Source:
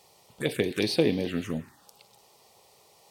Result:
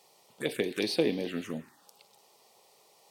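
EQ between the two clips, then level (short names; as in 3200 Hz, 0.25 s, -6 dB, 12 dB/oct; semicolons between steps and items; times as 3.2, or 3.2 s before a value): HPF 200 Hz 12 dB/oct; -3.0 dB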